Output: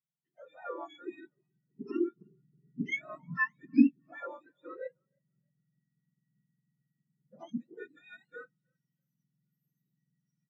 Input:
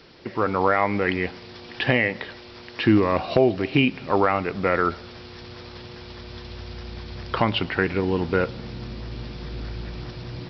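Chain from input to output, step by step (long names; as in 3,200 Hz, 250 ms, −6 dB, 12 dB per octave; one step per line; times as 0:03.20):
frequency axis turned over on the octave scale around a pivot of 830 Hz
0:02.16–0:04.12: low-shelf EQ 220 Hz +8.5 dB
echo with shifted repeats 312 ms, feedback 48%, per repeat +31 Hz, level −17 dB
every bin expanded away from the loudest bin 2.5 to 1
level −4 dB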